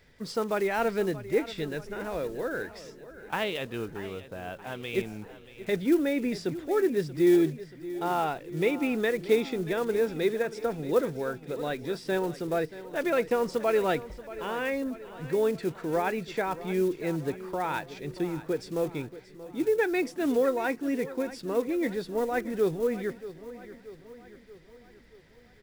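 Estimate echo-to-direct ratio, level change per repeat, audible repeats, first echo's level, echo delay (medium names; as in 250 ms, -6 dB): -14.0 dB, -5.0 dB, 4, -15.5 dB, 631 ms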